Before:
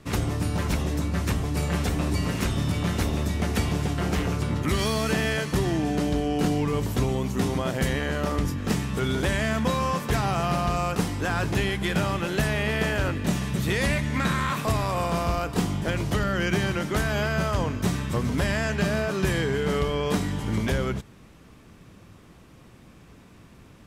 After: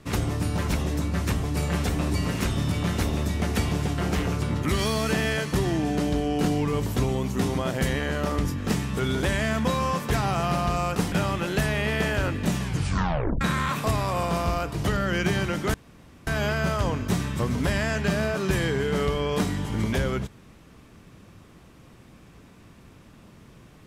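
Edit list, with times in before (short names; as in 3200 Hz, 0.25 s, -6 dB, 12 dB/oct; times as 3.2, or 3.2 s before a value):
11.12–11.93 cut
13.42 tape stop 0.80 s
15.56–16.02 cut
17.01 insert room tone 0.53 s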